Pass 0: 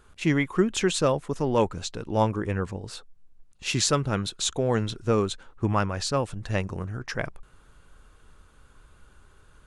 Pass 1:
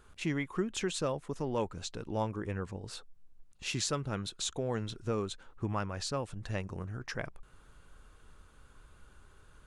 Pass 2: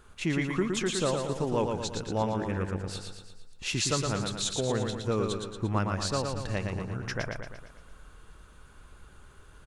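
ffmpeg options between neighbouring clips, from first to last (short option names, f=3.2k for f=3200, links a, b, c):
-af "acompressor=threshold=-39dB:ratio=1.5,volume=-3dB"
-af "aecho=1:1:115|230|345|460|575|690|805:0.596|0.316|0.167|0.0887|0.047|0.0249|0.0132,volume=4dB"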